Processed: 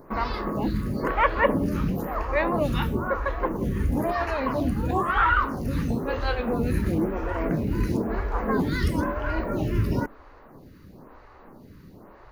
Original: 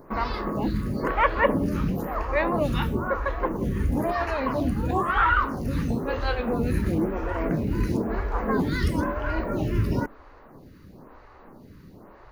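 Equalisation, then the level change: bell 13000 Hz +3.5 dB 0.26 oct; 0.0 dB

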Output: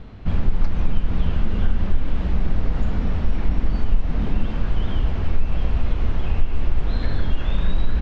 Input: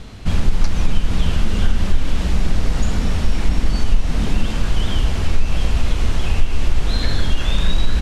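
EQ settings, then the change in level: air absorption 150 m; high shelf 3000 Hz -11 dB; -3.0 dB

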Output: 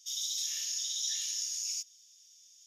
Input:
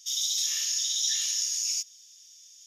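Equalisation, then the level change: Bessel high-pass 1600 Hz, order 2; -6.5 dB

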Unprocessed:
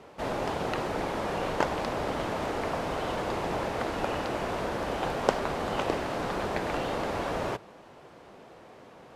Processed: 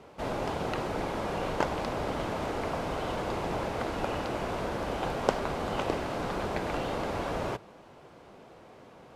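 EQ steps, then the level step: low shelf 180 Hz +4 dB; notch 1800 Hz, Q 22; -2.0 dB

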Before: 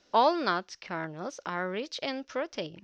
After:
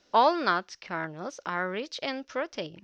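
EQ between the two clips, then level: dynamic EQ 1500 Hz, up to +4 dB, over -39 dBFS, Q 0.89; 0.0 dB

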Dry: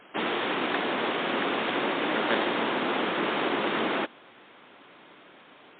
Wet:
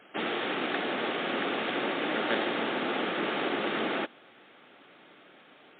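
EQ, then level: HPF 94 Hz; notch 1000 Hz, Q 6.5; -2.5 dB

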